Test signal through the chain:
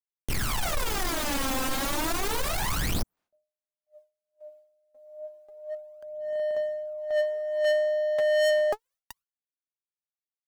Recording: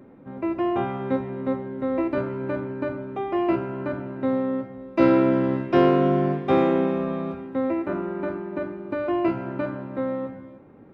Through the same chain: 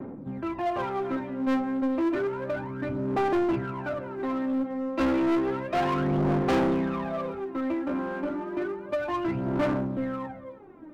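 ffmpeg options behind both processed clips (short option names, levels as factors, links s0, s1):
-filter_complex "[0:a]aphaser=in_gain=1:out_gain=1:delay=3.8:decay=0.78:speed=0.31:type=sinusoidal,equalizer=f=450:w=0.93:g=-5,acrossover=split=220|1300[s0][s1][s2];[s1]acontrast=57[s3];[s0][s3][s2]amix=inputs=3:normalize=0,asoftclip=type=tanh:threshold=0.188,agate=range=0.0224:threshold=0.00447:ratio=3:detection=peak,asplit=2[s4][s5];[s5]asoftclip=type=hard:threshold=0.0355,volume=0.562[s6];[s4][s6]amix=inputs=2:normalize=0,volume=0.422"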